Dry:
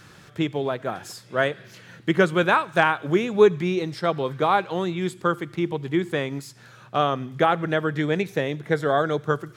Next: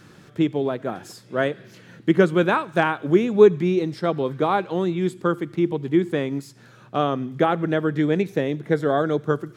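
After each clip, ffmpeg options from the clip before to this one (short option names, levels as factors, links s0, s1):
-af "equalizer=f=270:t=o:w=1.9:g=9,volume=0.668"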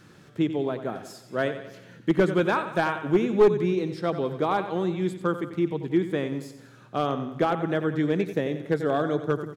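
-filter_complex "[0:a]asplit=2[s0][s1];[s1]aecho=0:1:91|182|273|364|455:0.282|0.144|0.0733|0.0374|0.0191[s2];[s0][s2]amix=inputs=2:normalize=0,aeval=exprs='clip(val(0),-1,0.299)':c=same,volume=0.631"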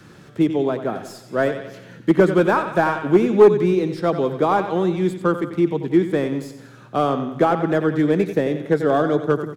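-filter_complex "[0:a]acrossover=split=130|750|1700[s0][s1][s2][s3];[s0]acompressor=threshold=0.00316:ratio=6[s4];[s3]aeval=exprs='(tanh(112*val(0)+0.45)-tanh(0.45))/112':c=same[s5];[s4][s1][s2][s5]amix=inputs=4:normalize=0,volume=2.24"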